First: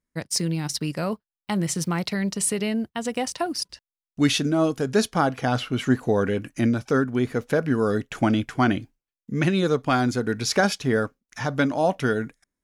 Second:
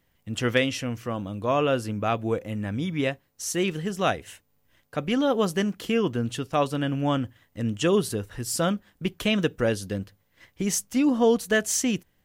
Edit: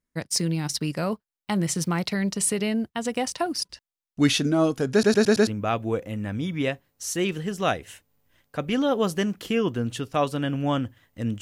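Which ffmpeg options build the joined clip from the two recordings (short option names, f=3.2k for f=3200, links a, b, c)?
-filter_complex "[0:a]apad=whole_dur=11.41,atrim=end=11.41,asplit=5[a][b][c][d][e];[a]atrim=end=5.032[f];[b]atrim=start=4.918:end=5.032[g];[c]atrim=start=4.918:end=5.032[h];[d]atrim=start=4.918:end=5.032[i];[e]atrim=start=4.918:end=5.032[j];[1:a]atrim=start=1.858:end=7.8[k];[f][g]acrossfade=d=0.004:c1=hsin:c2=hsin[l];[l][h]acrossfade=d=0.004:c1=hsin:c2=hsin[m];[m][i]acrossfade=d=0.004:c1=hsin:c2=hsin[n];[n][j]acrossfade=d=0.004:c1=hsin:c2=hsin[o];[o][k]acrossfade=d=0.004:c1=hsin:c2=hsin"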